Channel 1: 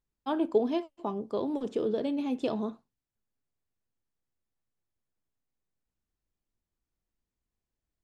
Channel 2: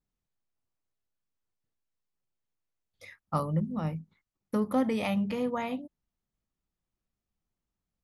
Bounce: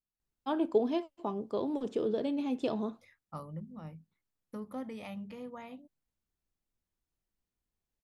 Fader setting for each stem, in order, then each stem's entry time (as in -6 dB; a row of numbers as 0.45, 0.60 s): -2.0, -13.5 dB; 0.20, 0.00 s